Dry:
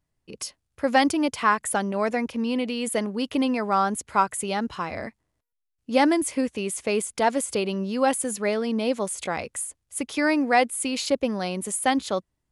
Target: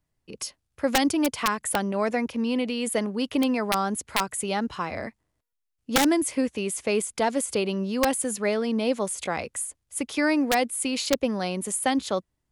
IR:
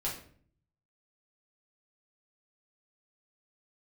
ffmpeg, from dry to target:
-filter_complex "[0:a]acrossover=split=460|3000[a][b][c];[b]acompressor=threshold=-22dB:ratio=10[d];[a][d][c]amix=inputs=3:normalize=0,aeval=exprs='(mod(4.22*val(0)+1,2)-1)/4.22':c=same"

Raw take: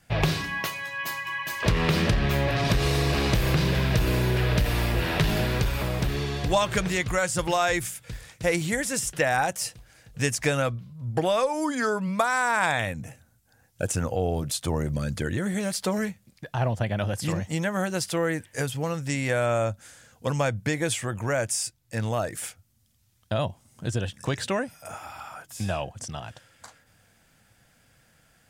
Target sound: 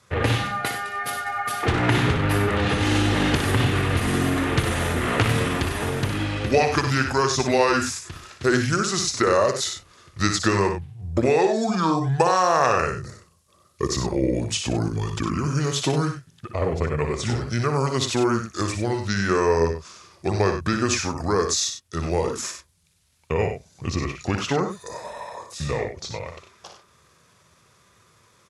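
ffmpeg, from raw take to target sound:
-filter_complex "[0:a]highpass=140,asetrate=32097,aresample=44100,atempo=1.37395,asplit=2[a][b];[b]aecho=0:1:60|96:0.422|0.316[c];[a][c]amix=inputs=2:normalize=0,volume=4dB"

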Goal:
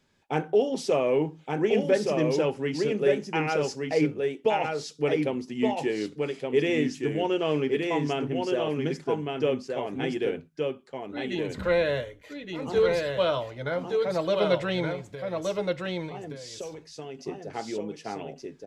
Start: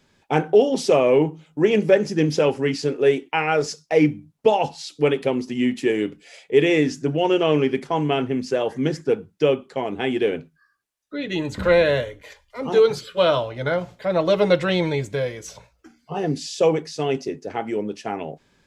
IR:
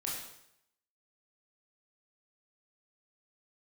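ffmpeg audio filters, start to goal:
-filter_complex "[0:a]asettb=1/sr,asplit=3[a][b][c];[a]atrim=end=14.914[d];[b]atrim=start=14.91:end=17.19,asetpts=PTS-STARTPTS,afade=t=in:d=0.004:c=qsin,afade=t=out:st=2.276:d=0.004:c=qsin,acompressor=threshold=-29dB:ratio=6[e];[c]atrim=start=17.186[f];[d][e]acrossfade=d=0.004:c1=hsin:c2=qsin[g];[g][f]acrossfade=d=0.004:c1=qsin:c2=hsin,aecho=1:1:1171:0.668,volume=-7.5dB"

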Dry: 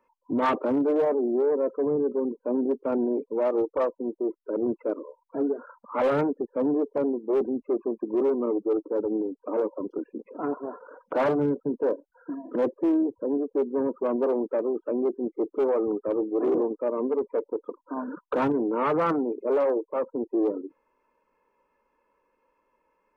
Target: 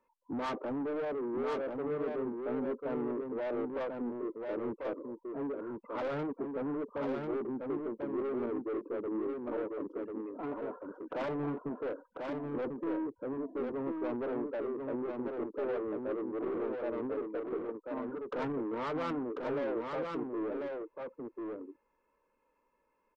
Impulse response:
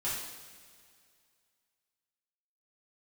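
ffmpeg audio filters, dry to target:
-filter_complex "[0:a]lowshelf=f=180:g=4,asoftclip=type=tanh:threshold=-25.5dB,asplit=2[a][b];[b]aecho=0:1:1043:0.631[c];[a][c]amix=inputs=2:normalize=0,volume=-7dB"

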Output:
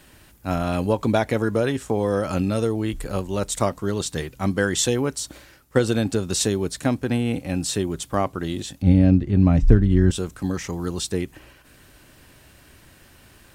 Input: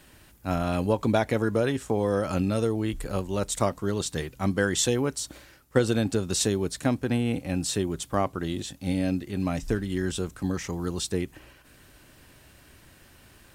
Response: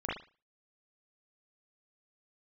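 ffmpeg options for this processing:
-filter_complex "[0:a]asettb=1/sr,asplit=3[a][b][c];[a]atrim=end=8.824[d];[b]atrim=start=8.82:end=10.11,asetpts=PTS-STARTPTS,afade=t=in:d=0.004:c=qsin,afade=t=out:st=1.286:d=0.004:c=qsin,aemphasis=mode=reproduction:type=riaa[e];[c]atrim=start=10.106[f];[d][e]acrossfade=d=0.004:c1=hsin:c2=qsin[g];[g][f]acrossfade=d=0.004:c1=qsin:c2=hsin,volume=3dB"

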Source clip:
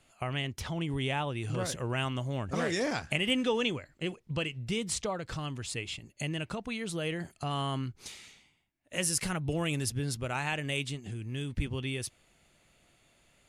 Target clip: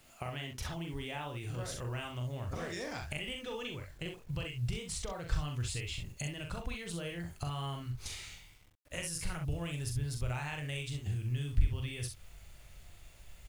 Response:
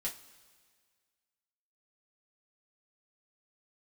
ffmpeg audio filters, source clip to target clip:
-af "acompressor=threshold=-41dB:ratio=5,asubboost=boost=11.5:cutoff=69,acrusher=bits=10:mix=0:aa=0.000001,aecho=1:1:41|65:0.562|0.422,volume=2dB"

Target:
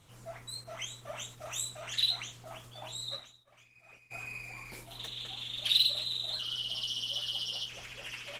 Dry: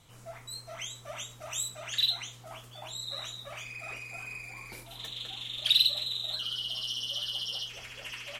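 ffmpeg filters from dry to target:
-filter_complex "[0:a]asettb=1/sr,asplit=3[a][b][c];[a]atrim=end=0.644[d];[b]atrim=start=0.64:end=1.21,asetpts=PTS-STARTPTS,afade=t=in:d=0.004:c=qsin,afade=t=out:st=0.566:d=0.004:c=qsin,adynamicequalizer=threshold=0.00178:dfrequency=6400:dqfactor=1.2:tfrequency=6400:tqfactor=1.2:attack=5:release=100:ratio=0.375:range=3:mode=cutabove:tftype=bell[e];[c]atrim=start=1.206[f];[d][e]acrossfade=d=0.004:c1=hsin:c2=qsin[g];[g][f]acrossfade=d=0.004:c1=qsin:c2=hsin,asplit=3[h][i][j];[h]afade=t=out:st=3.16:d=0.02[k];[i]agate=range=-33dB:threshold=-30dB:ratio=3:detection=peak,afade=t=in:st=3.16:d=0.02,afade=t=out:st=4.1:d=0.02[l];[j]afade=t=in:st=4.1:d=0.02[m];[k][l][m]amix=inputs=3:normalize=0" -ar 48000 -c:a libopus -b:a 16k

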